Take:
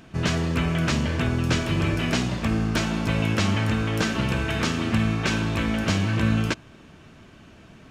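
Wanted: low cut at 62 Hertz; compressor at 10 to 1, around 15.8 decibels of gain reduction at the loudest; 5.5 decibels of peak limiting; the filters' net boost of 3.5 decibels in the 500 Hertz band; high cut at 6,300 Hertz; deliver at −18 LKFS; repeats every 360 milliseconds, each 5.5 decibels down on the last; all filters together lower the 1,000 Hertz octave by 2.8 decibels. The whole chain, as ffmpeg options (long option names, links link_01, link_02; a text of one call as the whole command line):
ffmpeg -i in.wav -af "highpass=62,lowpass=6300,equalizer=frequency=500:width_type=o:gain=6,equalizer=frequency=1000:width_type=o:gain=-5.5,acompressor=threshold=-34dB:ratio=10,alimiter=level_in=5.5dB:limit=-24dB:level=0:latency=1,volume=-5.5dB,aecho=1:1:360|720|1080|1440|1800|2160|2520:0.531|0.281|0.149|0.079|0.0419|0.0222|0.0118,volume=20dB" out.wav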